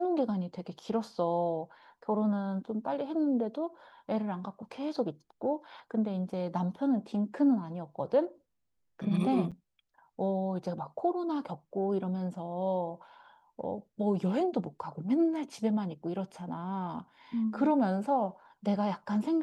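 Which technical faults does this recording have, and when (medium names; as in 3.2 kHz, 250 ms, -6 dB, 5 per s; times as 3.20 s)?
9.51–9.52 s: dropout 7.1 ms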